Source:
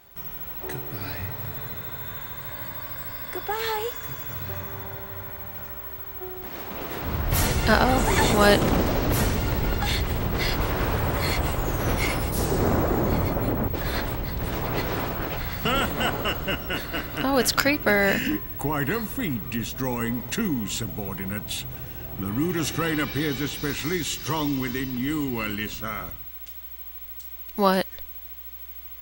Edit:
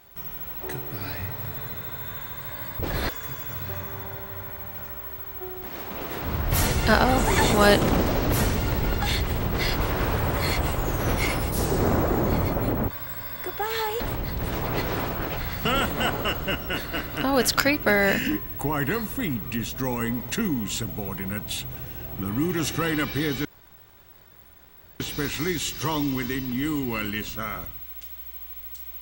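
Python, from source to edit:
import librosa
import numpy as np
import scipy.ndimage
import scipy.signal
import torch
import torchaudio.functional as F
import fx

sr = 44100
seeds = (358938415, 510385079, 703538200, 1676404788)

y = fx.edit(x, sr, fx.swap(start_s=2.79, length_s=1.1, other_s=13.7, other_length_s=0.3),
    fx.insert_room_tone(at_s=23.45, length_s=1.55), tone=tone)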